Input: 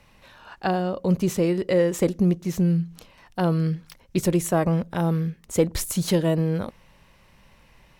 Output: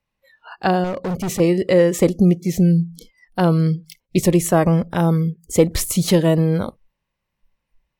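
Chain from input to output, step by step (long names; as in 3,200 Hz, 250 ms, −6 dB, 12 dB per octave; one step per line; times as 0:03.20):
noise reduction from a noise print of the clip's start 29 dB
0:00.84–0:01.40: gain into a clipping stage and back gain 26.5 dB
level +6 dB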